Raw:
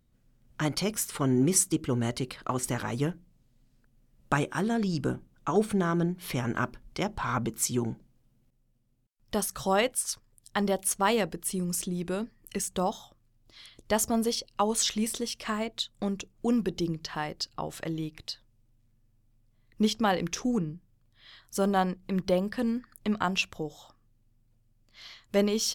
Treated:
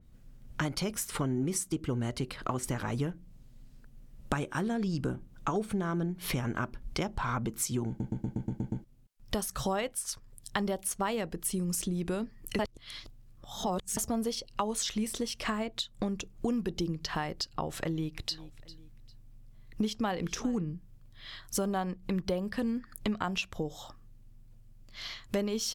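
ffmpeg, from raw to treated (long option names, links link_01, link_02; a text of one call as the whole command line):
ffmpeg -i in.wav -filter_complex "[0:a]asplit=3[link_01][link_02][link_03];[link_01]afade=type=out:start_time=18.3:duration=0.02[link_04];[link_02]aecho=1:1:399|798:0.0794|0.0246,afade=type=in:start_time=18.3:duration=0.02,afade=type=out:start_time=20.61:duration=0.02[link_05];[link_03]afade=type=in:start_time=20.61:duration=0.02[link_06];[link_04][link_05][link_06]amix=inputs=3:normalize=0,asplit=11[link_07][link_08][link_09][link_10][link_11][link_12][link_13][link_14][link_15][link_16][link_17];[link_07]atrim=end=8.002[link_18];[link_08]atrim=start=7.878:end=8.002[link_19];[link_09]atrim=start=7.878:end=8.002[link_20];[link_10]atrim=start=7.878:end=8.002[link_21];[link_11]atrim=start=7.878:end=8.002[link_22];[link_12]atrim=start=7.878:end=8.002[link_23];[link_13]atrim=start=7.878:end=8.002[link_24];[link_14]atrim=start=7.878:end=8.002[link_25];[link_15]atrim=start=8.838:end=12.592[link_26];[link_16]atrim=start=12.588:end=13.972,asetpts=PTS-STARTPTS,areverse[link_27];[link_17]atrim=start=13.968[link_28];[link_18][link_19]acrossfade=duration=0.004:curve1=hsin:curve2=hsin[link_29];[link_29][link_20]acrossfade=duration=0.004:curve1=hsin:curve2=hsin[link_30];[link_30][link_21]acrossfade=duration=0.004:curve1=hsin:curve2=hsin[link_31];[link_31][link_22]acrossfade=duration=0.004:curve1=hsin:curve2=hsin[link_32];[link_32][link_23]acrossfade=duration=0.004:curve1=hsin:curve2=hsin[link_33];[link_33][link_24]acrossfade=duration=0.004:curve1=hsin:curve2=hsin[link_34];[link_34][link_25]acrossfade=duration=0.004:curve1=hsin:curve2=hsin[link_35];[link_35][link_26]acrossfade=duration=0.004:curve1=hsin:curve2=hsin[link_36];[link_36][link_27]acrossfade=duration=0.004:curve1=hsin:curve2=hsin[link_37];[link_37][link_28]acrossfade=duration=0.004:curve1=hsin:curve2=hsin,lowshelf=frequency=91:gain=7.5,acompressor=threshold=-37dB:ratio=4,adynamicequalizer=threshold=0.002:dfrequency=3000:dqfactor=0.7:tfrequency=3000:tqfactor=0.7:attack=5:release=100:ratio=0.375:range=1.5:mode=cutabove:tftype=highshelf,volume=6.5dB" out.wav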